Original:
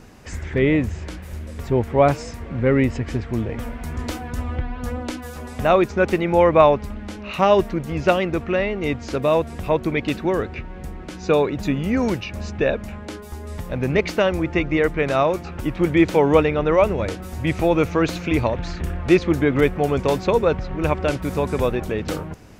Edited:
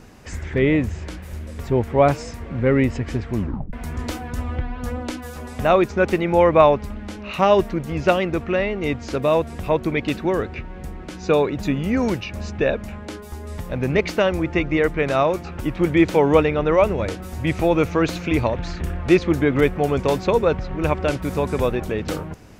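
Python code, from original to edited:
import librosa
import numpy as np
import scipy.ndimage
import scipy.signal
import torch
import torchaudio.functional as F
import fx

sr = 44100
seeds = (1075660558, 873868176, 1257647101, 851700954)

y = fx.edit(x, sr, fx.tape_stop(start_s=3.36, length_s=0.37), tone=tone)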